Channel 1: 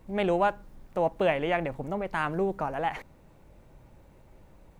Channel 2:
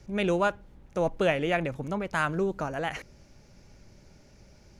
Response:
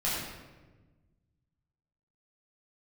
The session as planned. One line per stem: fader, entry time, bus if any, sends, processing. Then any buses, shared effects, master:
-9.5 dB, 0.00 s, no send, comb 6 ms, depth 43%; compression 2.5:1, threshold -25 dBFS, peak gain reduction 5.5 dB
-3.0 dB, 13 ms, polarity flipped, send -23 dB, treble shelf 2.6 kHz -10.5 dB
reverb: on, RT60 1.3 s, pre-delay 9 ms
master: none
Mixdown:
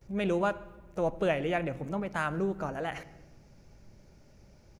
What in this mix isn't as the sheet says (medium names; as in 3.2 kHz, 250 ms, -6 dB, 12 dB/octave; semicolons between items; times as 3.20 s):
stem 1 -9.5 dB -> -18.0 dB; master: extra treble shelf 4.9 kHz +8.5 dB